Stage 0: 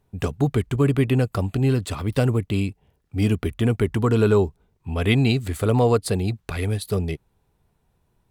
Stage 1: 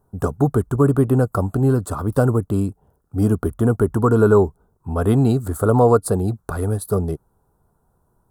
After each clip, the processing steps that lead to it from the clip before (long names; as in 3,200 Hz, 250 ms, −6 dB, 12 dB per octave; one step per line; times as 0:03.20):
drawn EQ curve 110 Hz 0 dB, 1,400 Hz +5 dB, 2,200 Hz −24 dB, 9,500 Hz +3 dB
level +2 dB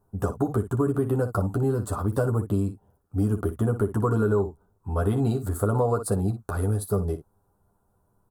on a send: ambience of single reflections 10 ms −3.5 dB, 59 ms −11.5 dB
on the sum: downward compressor, threshold −14 dBFS, peak gain reduction 8.5 dB
level −5.5 dB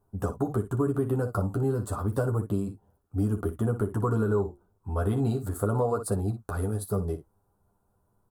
flanger 0.32 Hz, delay 2.6 ms, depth 7.9 ms, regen −76%
level +1.5 dB